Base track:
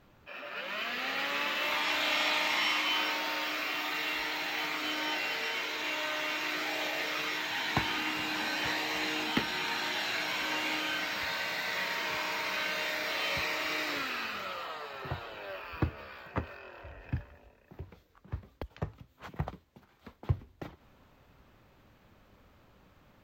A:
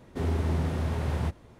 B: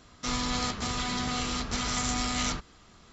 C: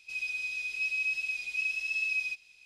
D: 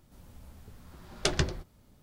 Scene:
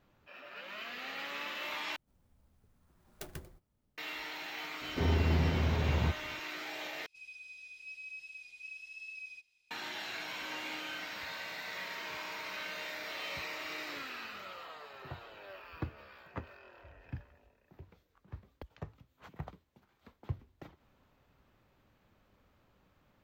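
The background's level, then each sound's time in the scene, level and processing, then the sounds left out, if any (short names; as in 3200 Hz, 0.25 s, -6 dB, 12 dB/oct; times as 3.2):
base track -8 dB
1.96 replace with D -18 dB + clock jitter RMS 0.051 ms
4.81 add A -1.5 dB + steep low-pass 6000 Hz
7.06 replace with C -15.5 dB
not used: B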